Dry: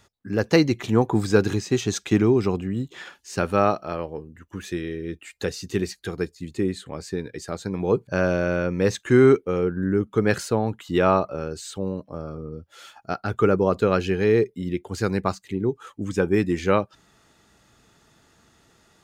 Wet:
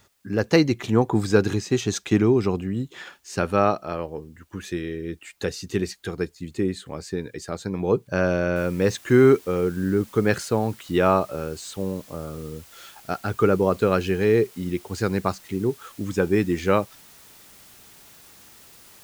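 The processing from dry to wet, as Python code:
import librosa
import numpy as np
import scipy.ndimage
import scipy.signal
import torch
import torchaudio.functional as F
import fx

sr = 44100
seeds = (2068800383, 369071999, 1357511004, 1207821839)

y = fx.noise_floor_step(x, sr, seeds[0], at_s=8.56, before_db=-69, after_db=-50, tilt_db=0.0)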